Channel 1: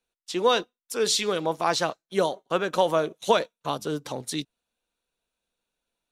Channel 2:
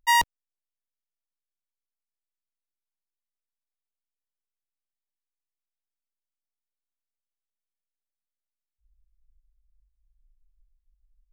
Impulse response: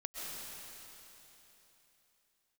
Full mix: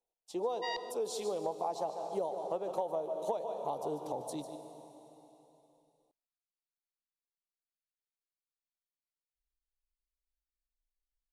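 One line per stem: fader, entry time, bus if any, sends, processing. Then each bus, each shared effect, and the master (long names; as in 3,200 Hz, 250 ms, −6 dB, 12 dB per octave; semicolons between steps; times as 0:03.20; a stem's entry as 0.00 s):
−4.5 dB, 0.00 s, send −8 dB, echo send −10 dB, drawn EQ curve 130 Hz 0 dB, 270 Hz −4 dB, 850 Hz +3 dB, 1,500 Hz −25 dB, 9,600 Hz −4 dB
−4.0 dB, 0.55 s, no send, echo send −19.5 dB, transistor ladder low-pass 4,800 Hz, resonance 75%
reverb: on, RT60 3.4 s, pre-delay 90 ms
echo: single-tap delay 148 ms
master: bass and treble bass −10 dB, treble −5 dB; downward compressor 5 to 1, threshold −32 dBFS, peak gain reduction 12.5 dB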